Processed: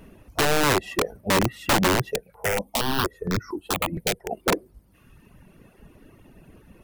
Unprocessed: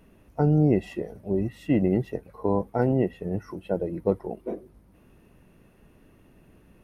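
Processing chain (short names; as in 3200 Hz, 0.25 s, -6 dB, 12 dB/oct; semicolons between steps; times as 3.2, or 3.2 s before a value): reverb removal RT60 1.5 s; dynamic EQ 430 Hz, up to +6 dB, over -37 dBFS, Q 0.85; compressor 6:1, threshold -22 dBFS, peak gain reduction 10 dB; wrapped overs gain 22.5 dB; 2.11–4.32 step phaser 4.3 Hz 300–2900 Hz; gain +8.5 dB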